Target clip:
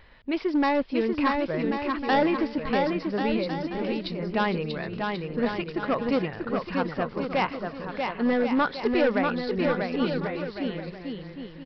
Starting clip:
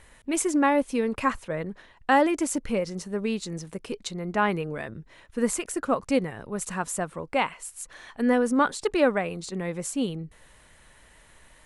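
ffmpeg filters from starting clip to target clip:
-af "aresample=11025,asoftclip=type=hard:threshold=0.119,aresample=44100,aecho=1:1:640|1088|1402|1621|1775:0.631|0.398|0.251|0.158|0.1"

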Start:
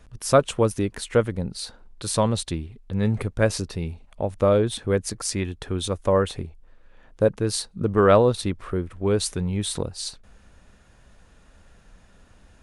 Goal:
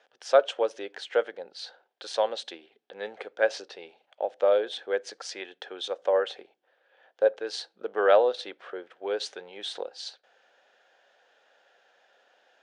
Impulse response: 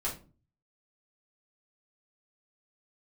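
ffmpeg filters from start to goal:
-filter_complex "[0:a]highpass=f=430:w=0.5412,highpass=f=430:w=1.3066,equalizer=f=530:t=q:w=4:g=5,equalizer=f=760:t=q:w=4:g=8,equalizer=f=1100:t=q:w=4:g=-6,equalizer=f=1600:t=q:w=4:g=7,equalizer=f=3200:t=q:w=4:g=7,lowpass=f=5800:w=0.5412,lowpass=f=5800:w=1.3066,asplit=2[s0][s1];[1:a]atrim=start_sample=2205[s2];[s1][s2]afir=irnorm=-1:irlink=0,volume=0.0668[s3];[s0][s3]amix=inputs=2:normalize=0,volume=0.473"

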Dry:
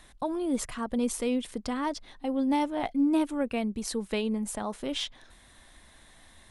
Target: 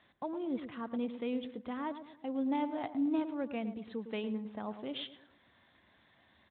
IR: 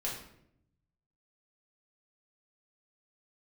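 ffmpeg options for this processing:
-filter_complex "[0:a]asplit=3[s0][s1][s2];[s0]afade=t=out:st=0.72:d=0.02[s3];[s1]equalizer=f=71:t=o:w=0.32:g=-13.5,afade=t=in:st=0.72:d=0.02,afade=t=out:st=1.36:d=0.02[s4];[s2]afade=t=in:st=1.36:d=0.02[s5];[s3][s4][s5]amix=inputs=3:normalize=0,asplit=2[s6][s7];[s7]adelay=109,lowpass=f=1300:p=1,volume=0.335,asplit=2[s8][s9];[s9]adelay=109,lowpass=f=1300:p=1,volume=0.42,asplit=2[s10][s11];[s11]adelay=109,lowpass=f=1300:p=1,volume=0.42,asplit=2[s12][s13];[s13]adelay=109,lowpass=f=1300:p=1,volume=0.42,asplit=2[s14][s15];[s15]adelay=109,lowpass=f=1300:p=1,volume=0.42[s16];[s6][s8][s10][s12][s14][s16]amix=inputs=6:normalize=0,volume=0.398" -ar 8000 -c:a libspeex -b:a 24k

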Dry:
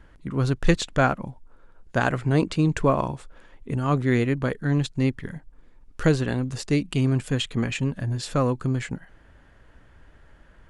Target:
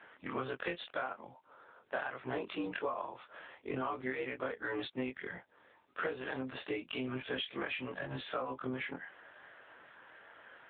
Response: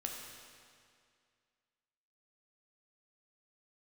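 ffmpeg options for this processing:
-af "afftfilt=real='re':imag='-im':win_size=2048:overlap=0.75,highpass=540,acompressor=threshold=0.00708:ratio=20,volume=3.35" -ar 8000 -c:a libopencore_amrnb -b:a 7950

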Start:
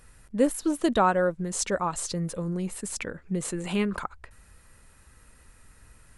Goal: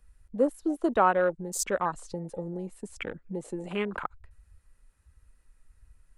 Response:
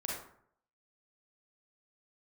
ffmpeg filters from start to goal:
-filter_complex "[0:a]afwtdn=0.02,acrossover=split=280|1100[s0][s1][s2];[s0]acompressor=threshold=0.00891:ratio=6[s3];[s3][s1][s2]amix=inputs=3:normalize=0"

